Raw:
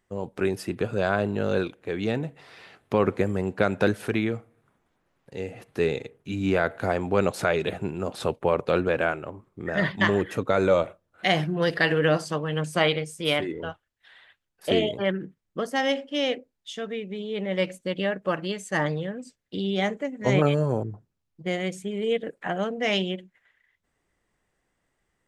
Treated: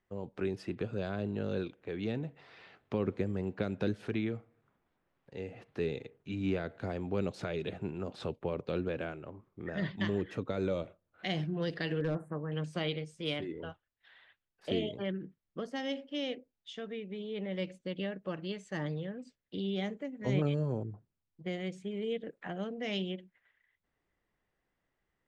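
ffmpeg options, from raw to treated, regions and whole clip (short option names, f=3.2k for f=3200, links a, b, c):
-filter_complex "[0:a]asettb=1/sr,asplit=3[a][b][c];[a]atrim=end=12.004[d];[b]atrim=start=12:end=12.52,asetpts=PTS-STARTPTS,afade=t=in:d=0.004:c=qsin,afade=t=out:st=0.516:d=0.004:c=qsin,asuperstop=centerf=4400:order=8:qfactor=0.56,asoftclip=type=hard:threshold=-16dB[e];[c]atrim=start=12.516[f];[d][e]acrossfade=d=0.004:c1=hsin:c2=qsin[g];[g][f]acrossfade=d=0.004:c1=qsin:c2=hsin,lowpass=4.4k,acrossover=split=430|3000[h][i][j];[i]acompressor=threshold=-38dB:ratio=3[k];[h][k][j]amix=inputs=3:normalize=0,volume=-7dB"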